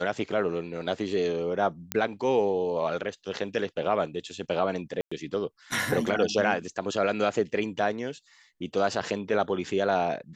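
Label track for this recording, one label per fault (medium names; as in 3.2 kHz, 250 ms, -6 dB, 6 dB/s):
1.920000	1.920000	pop -9 dBFS
5.010000	5.120000	dropout 105 ms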